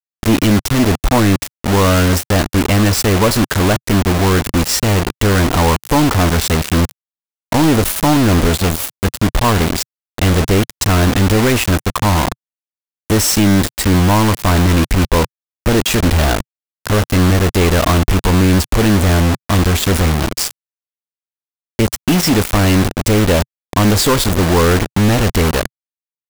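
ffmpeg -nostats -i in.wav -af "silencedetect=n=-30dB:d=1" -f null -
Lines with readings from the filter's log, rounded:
silence_start: 20.51
silence_end: 21.79 | silence_duration: 1.28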